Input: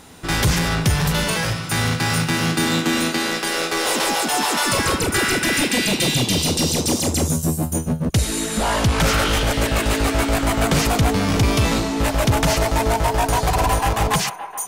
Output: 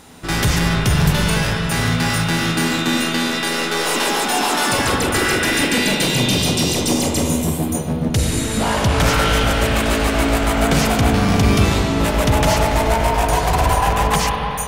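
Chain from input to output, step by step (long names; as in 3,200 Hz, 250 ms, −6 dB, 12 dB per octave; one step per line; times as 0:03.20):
0:10.39–0:10.97: surface crackle 27 per second → 88 per second −37 dBFS
on a send: convolution reverb RT60 3.2 s, pre-delay 41 ms, DRR 1 dB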